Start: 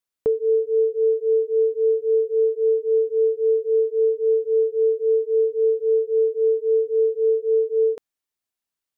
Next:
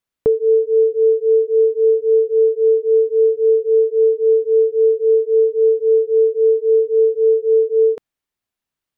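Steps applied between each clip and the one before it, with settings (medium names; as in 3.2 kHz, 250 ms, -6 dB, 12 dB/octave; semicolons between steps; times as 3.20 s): tone controls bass +5 dB, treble -6 dB; trim +5 dB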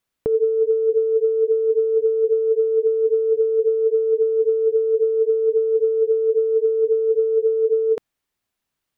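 compressor with a negative ratio -18 dBFS, ratio -1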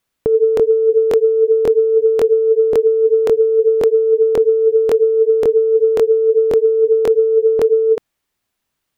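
crackling interface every 0.54 s, samples 1024, repeat, from 0.55 s; trim +5.5 dB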